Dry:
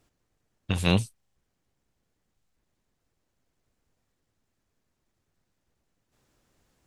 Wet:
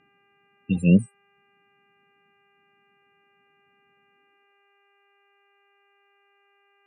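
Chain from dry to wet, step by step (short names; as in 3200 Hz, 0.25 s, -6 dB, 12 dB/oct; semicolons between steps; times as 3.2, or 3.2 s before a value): loudest bins only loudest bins 16; high-pass sweep 180 Hz -> 1700 Hz, 4.13–4.91; buzz 400 Hz, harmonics 7, -67 dBFS -1 dB/oct; gain +2 dB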